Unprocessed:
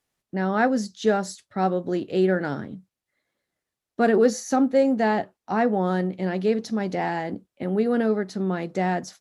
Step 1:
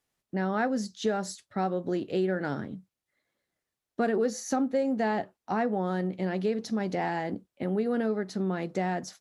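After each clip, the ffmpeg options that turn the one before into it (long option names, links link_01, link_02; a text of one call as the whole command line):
ffmpeg -i in.wav -af "acompressor=threshold=-23dB:ratio=3,volume=-2dB" out.wav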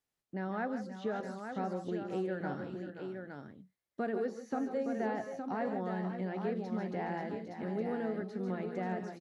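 ffmpeg -i in.wav -filter_complex "[0:a]aecho=1:1:141|158|528|545|866:0.237|0.237|0.266|0.2|0.473,acrossover=split=3000[link_01][link_02];[link_02]acompressor=threshold=-57dB:ratio=4:attack=1:release=60[link_03];[link_01][link_03]amix=inputs=2:normalize=0,volume=-8.5dB" out.wav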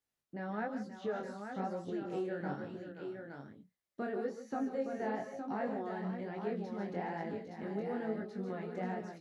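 ffmpeg -i in.wav -af "flanger=delay=18:depth=6.9:speed=1.1,volume=1dB" out.wav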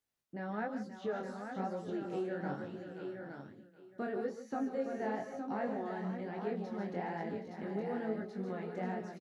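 ffmpeg -i in.wav -af "aecho=1:1:771:0.188" out.wav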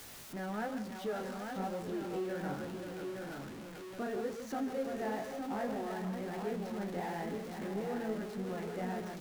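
ffmpeg -i in.wav -af "aeval=exprs='val(0)+0.5*0.00944*sgn(val(0))':channel_layout=same,volume=-2dB" out.wav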